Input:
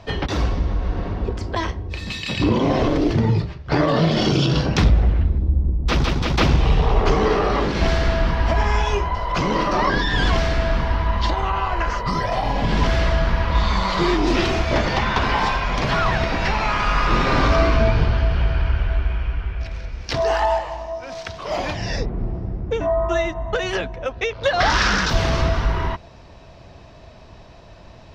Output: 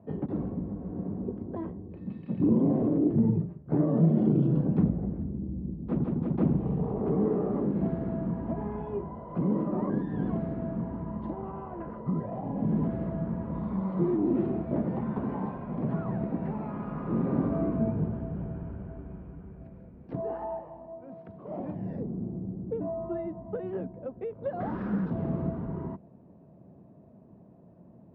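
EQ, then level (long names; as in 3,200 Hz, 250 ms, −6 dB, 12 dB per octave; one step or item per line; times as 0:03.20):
four-pole ladder band-pass 230 Hz, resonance 40%
high-frequency loss of the air 130 metres
+6.5 dB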